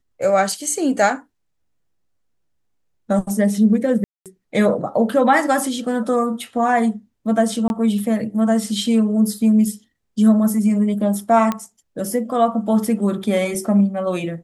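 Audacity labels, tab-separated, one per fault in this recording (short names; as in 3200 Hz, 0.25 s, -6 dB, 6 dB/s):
4.040000	4.260000	gap 0.217 s
7.680000	7.700000	gap 21 ms
11.520000	11.520000	pop -9 dBFS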